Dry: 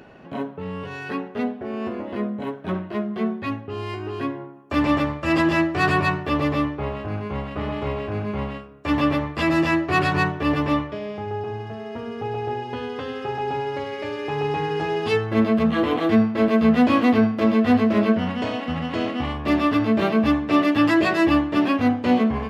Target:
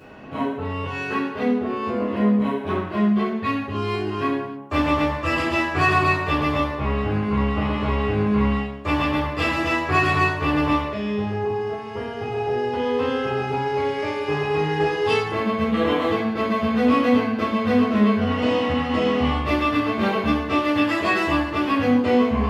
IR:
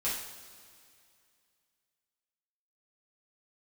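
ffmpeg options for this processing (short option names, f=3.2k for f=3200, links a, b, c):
-filter_complex "[0:a]acompressor=threshold=-22dB:ratio=3[a];[1:a]atrim=start_sample=2205,afade=t=out:st=0.37:d=0.01,atrim=end_sample=16758[b];[a][b]afir=irnorm=-1:irlink=0"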